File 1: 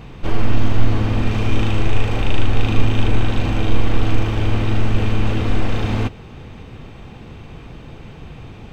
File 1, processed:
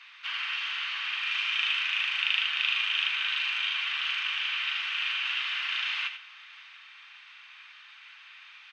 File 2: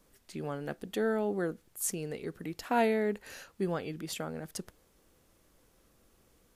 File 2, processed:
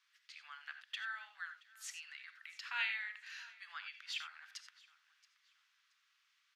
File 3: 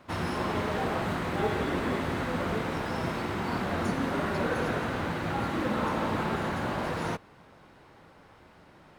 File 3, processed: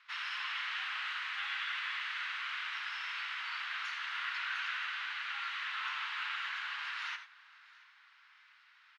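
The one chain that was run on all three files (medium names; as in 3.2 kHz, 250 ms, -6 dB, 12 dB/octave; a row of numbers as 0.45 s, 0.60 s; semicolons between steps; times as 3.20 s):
Bessel high-pass 2.3 kHz, order 8; distance through air 220 m; feedback delay 676 ms, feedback 30%, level -21.5 dB; gated-style reverb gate 110 ms rising, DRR 8.5 dB; dynamic bell 2.9 kHz, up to +7 dB, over -55 dBFS, Q 3.4; trim +6 dB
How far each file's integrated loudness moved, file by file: -6.5 LU, -10.0 LU, -6.5 LU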